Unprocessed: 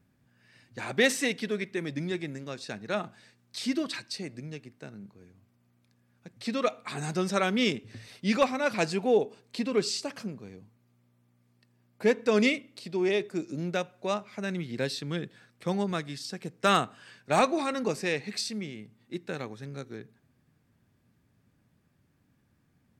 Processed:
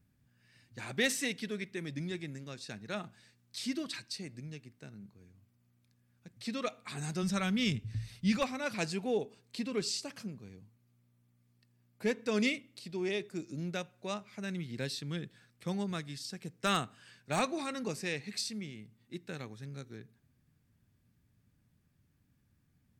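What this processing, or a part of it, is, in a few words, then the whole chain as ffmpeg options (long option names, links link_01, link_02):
smiley-face EQ: -filter_complex "[0:a]lowshelf=frequency=96:gain=7.5,equalizer=frequency=630:width_type=o:width=2.8:gain=-6,highshelf=frequency=9900:gain=4.5,asplit=3[link_01][link_02][link_03];[link_01]afade=type=out:start_time=7.22:duration=0.02[link_04];[link_02]asubboost=boost=8:cutoff=120,afade=type=in:start_time=7.22:duration=0.02,afade=type=out:start_time=8.39:duration=0.02[link_05];[link_03]afade=type=in:start_time=8.39:duration=0.02[link_06];[link_04][link_05][link_06]amix=inputs=3:normalize=0,volume=-4dB"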